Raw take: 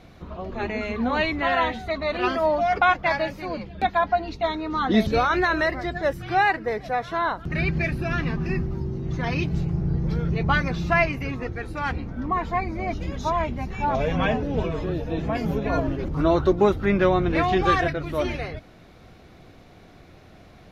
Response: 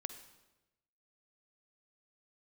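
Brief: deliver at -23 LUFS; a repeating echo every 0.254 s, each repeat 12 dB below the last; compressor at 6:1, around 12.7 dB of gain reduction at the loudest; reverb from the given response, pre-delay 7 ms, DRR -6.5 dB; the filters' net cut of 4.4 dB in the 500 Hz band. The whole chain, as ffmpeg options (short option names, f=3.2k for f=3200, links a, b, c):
-filter_complex "[0:a]equalizer=f=500:t=o:g=-6.5,acompressor=threshold=-30dB:ratio=6,aecho=1:1:254|508|762:0.251|0.0628|0.0157,asplit=2[a][b];[1:a]atrim=start_sample=2205,adelay=7[c];[b][c]afir=irnorm=-1:irlink=0,volume=8.5dB[d];[a][d]amix=inputs=2:normalize=0,volume=3.5dB"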